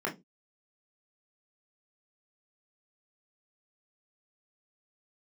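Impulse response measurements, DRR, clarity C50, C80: −3.0 dB, 14.5 dB, 24.0 dB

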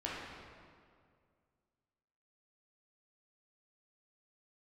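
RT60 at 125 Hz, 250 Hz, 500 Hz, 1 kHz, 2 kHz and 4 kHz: 2.5, 2.3, 2.2, 2.0, 1.7, 1.4 seconds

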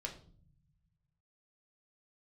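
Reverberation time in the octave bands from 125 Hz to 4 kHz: 2.1, 1.8, 0.55, 0.45, 0.35, 0.40 seconds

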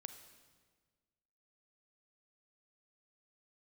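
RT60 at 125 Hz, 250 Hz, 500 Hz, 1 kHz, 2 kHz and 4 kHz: 1.8, 1.7, 1.6, 1.4, 1.4, 1.3 seconds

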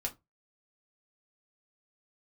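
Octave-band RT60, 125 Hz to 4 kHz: 0.30, 0.20, 0.20, 0.20, 0.15, 0.15 seconds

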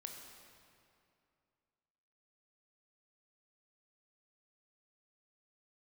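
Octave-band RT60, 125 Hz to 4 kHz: 2.7, 2.7, 2.6, 2.5, 2.2, 1.8 seconds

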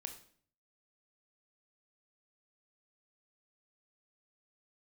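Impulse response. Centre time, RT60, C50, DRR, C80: 13 ms, 0.55 s, 9.5 dB, 5.5 dB, 13.5 dB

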